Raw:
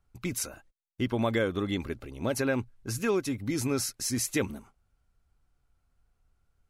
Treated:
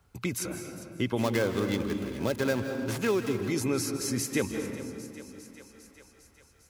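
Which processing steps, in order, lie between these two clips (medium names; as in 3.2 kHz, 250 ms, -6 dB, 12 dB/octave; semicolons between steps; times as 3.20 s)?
1.18–3.37 s: dead-time distortion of 0.13 ms; high-pass 76 Hz; peaking EQ 210 Hz +2.5 dB 0.41 oct; thinning echo 402 ms, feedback 58%, high-pass 320 Hz, level -20 dB; reverberation RT60 1.6 s, pre-delay 147 ms, DRR 8 dB; three bands compressed up and down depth 40%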